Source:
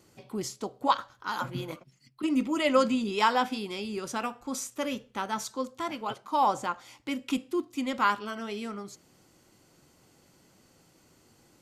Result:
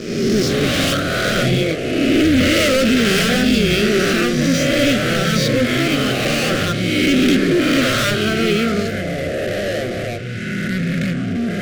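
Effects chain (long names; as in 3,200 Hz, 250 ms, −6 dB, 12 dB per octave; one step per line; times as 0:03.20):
peak hold with a rise ahead of every peak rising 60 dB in 1.31 s
low-pass filter 4,700 Hz 24 dB per octave
leveller curve on the samples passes 5
hard clipping −12.5 dBFS, distortion −15 dB
delay with pitch and tempo change per echo 98 ms, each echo −7 semitones, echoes 2, each echo −6 dB
Butterworth band-reject 930 Hz, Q 1.1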